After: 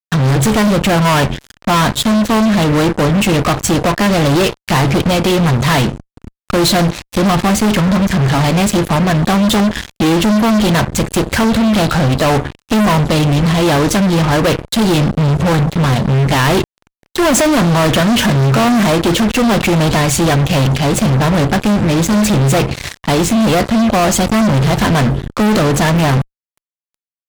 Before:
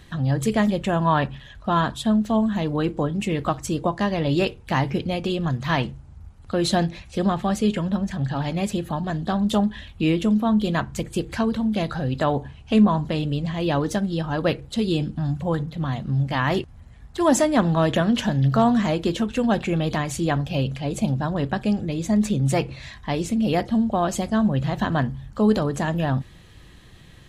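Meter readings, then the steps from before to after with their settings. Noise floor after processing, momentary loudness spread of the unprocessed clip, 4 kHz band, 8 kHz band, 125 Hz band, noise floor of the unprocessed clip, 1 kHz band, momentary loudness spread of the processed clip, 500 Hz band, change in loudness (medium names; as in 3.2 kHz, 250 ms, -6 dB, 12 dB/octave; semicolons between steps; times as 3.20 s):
under -85 dBFS, 7 LU, +14.0 dB, +15.5 dB, +11.0 dB, -46 dBFS, +10.0 dB, 4 LU, +9.5 dB, +10.5 dB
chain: Chebyshev shaper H 7 -23 dB, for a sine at -6.5 dBFS; fuzz box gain 39 dB, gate -42 dBFS; trim +3.5 dB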